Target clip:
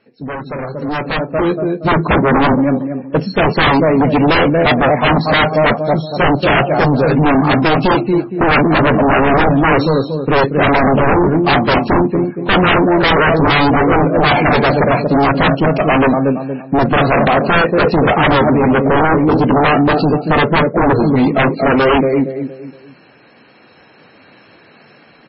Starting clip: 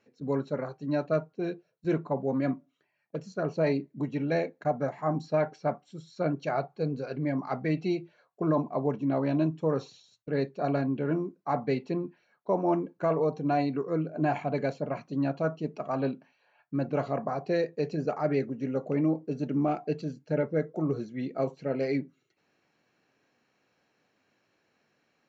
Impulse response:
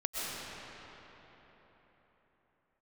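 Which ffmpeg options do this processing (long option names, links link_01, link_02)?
-filter_complex "[0:a]asplit=2[link_01][link_02];[link_02]adelay=233,lowpass=frequency=1300:poles=1,volume=-8dB,asplit=2[link_03][link_04];[link_04]adelay=233,lowpass=frequency=1300:poles=1,volume=0.35,asplit=2[link_05][link_06];[link_06]adelay=233,lowpass=frequency=1300:poles=1,volume=0.35,asplit=2[link_07][link_08];[link_08]adelay=233,lowpass=frequency=1300:poles=1,volume=0.35[link_09];[link_03][link_05][link_07][link_09]amix=inputs=4:normalize=0[link_10];[link_01][link_10]amix=inputs=2:normalize=0,aeval=exprs='0.188*sin(PI/2*5.01*val(0)/0.188)':channel_layout=same,dynaudnorm=framelen=530:gausssize=5:maxgain=15dB,volume=-5dB" -ar 22050 -c:a libmp3lame -b:a 16k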